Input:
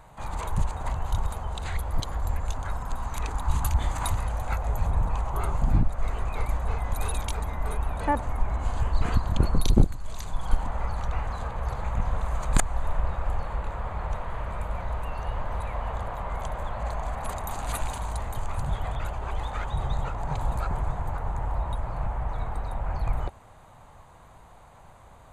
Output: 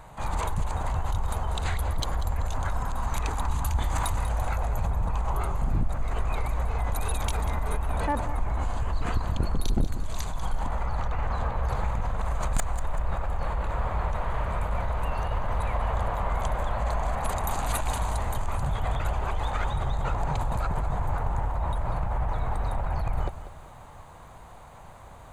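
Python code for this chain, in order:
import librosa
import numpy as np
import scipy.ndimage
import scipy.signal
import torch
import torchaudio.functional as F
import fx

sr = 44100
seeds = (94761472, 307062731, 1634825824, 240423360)

p1 = fx.lowpass(x, sr, hz=fx.line((10.83, 4800.0), (11.64, 2700.0)), slope=6, at=(10.83, 11.64), fade=0.02)
p2 = fx.over_compress(p1, sr, threshold_db=-29.0, ratio=-0.5)
p3 = p1 + (p2 * librosa.db_to_amplitude(0.0))
p4 = np.clip(p3, -10.0 ** (-13.5 / 20.0), 10.0 ** (-13.5 / 20.0))
p5 = fx.echo_crushed(p4, sr, ms=192, feedback_pct=35, bits=9, wet_db=-13.0)
y = p5 * librosa.db_to_amplitude(-4.0)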